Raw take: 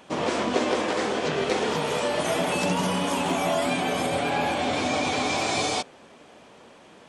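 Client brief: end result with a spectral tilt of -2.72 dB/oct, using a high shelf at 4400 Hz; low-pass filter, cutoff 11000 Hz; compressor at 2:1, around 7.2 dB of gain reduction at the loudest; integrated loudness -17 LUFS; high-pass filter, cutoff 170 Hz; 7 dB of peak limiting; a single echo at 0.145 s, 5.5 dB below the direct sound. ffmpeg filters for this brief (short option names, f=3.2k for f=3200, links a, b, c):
-af "highpass=170,lowpass=11k,highshelf=f=4.4k:g=-8.5,acompressor=threshold=-34dB:ratio=2,alimiter=level_in=1.5dB:limit=-24dB:level=0:latency=1,volume=-1.5dB,aecho=1:1:145:0.531,volume=16.5dB"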